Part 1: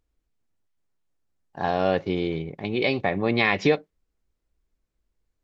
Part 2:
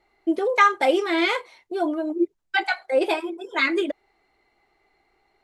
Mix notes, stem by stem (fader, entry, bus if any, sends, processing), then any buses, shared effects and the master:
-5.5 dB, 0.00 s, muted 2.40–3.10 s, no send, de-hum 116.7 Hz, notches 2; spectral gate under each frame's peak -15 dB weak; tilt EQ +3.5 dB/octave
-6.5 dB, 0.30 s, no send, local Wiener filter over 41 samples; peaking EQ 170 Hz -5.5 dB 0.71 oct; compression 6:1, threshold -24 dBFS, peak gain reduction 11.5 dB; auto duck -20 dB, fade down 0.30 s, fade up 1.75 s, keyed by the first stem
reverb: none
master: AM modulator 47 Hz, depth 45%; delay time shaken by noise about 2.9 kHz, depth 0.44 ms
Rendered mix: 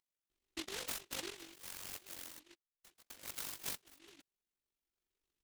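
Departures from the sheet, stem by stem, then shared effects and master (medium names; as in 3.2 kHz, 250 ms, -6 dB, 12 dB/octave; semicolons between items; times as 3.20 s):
stem 1 -5.5 dB -> -12.0 dB; stem 2 -6.5 dB -> -13.5 dB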